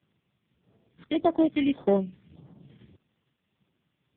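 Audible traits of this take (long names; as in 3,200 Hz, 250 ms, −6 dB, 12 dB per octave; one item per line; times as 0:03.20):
aliases and images of a low sample rate 2,700 Hz, jitter 0%
phaser sweep stages 2, 1.7 Hz, lowest notch 640–2,600 Hz
a quantiser's noise floor 12 bits, dither triangular
AMR narrowband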